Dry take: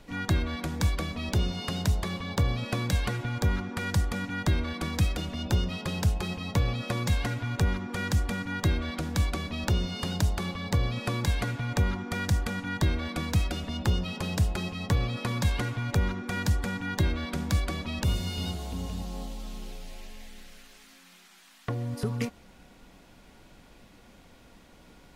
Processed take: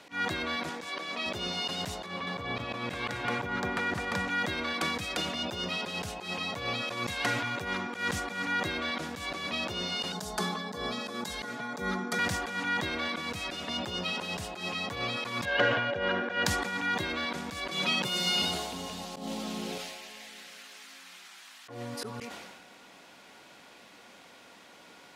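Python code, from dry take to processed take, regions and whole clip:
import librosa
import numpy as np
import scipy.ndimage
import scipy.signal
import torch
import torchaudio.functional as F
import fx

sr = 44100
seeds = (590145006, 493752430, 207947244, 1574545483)

y = fx.chain(x, sr, fx.highpass(hz=270.0, slope=12),
    fx.high_shelf(hz=11000.0, db=-11.0), at=(0.69, 1.26))
y = fx.chain(y, sr, fx.high_shelf(hz=3300.0, db=-11.5),
    fx.echo_single(ms=208, db=-3.5), at=(2.06, 4.28))
y = fx.chain(y, sr, fx.peak_eq(hz=2500.0, db=-10.5, octaves=1.0),
    fx.comb(ms=4.7, depth=1.0),
    fx.band_widen(depth_pct=70), at=(10.12, 12.19))
y = fx.chain(y, sr, fx.air_absorb(metres=180.0),
    fx.small_body(hz=(570.0, 1600.0, 2900.0), ring_ms=25, db=14), at=(15.45, 16.46))
y = fx.chain(y, sr, fx.highpass(hz=110.0, slope=24),
    fx.comb(ms=5.6, depth=0.7),
    fx.band_squash(depth_pct=100), at=(17.71, 18.42))
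y = fx.chain(y, sr, fx.peak_eq(hz=190.0, db=11.5, octaves=2.7),
    fx.env_flatten(amount_pct=50), at=(19.16, 19.78))
y = fx.weighting(y, sr, curve='A')
y = fx.auto_swell(y, sr, attack_ms=137.0)
y = fx.sustainer(y, sr, db_per_s=36.0)
y = y * 10.0 ** (5.0 / 20.0)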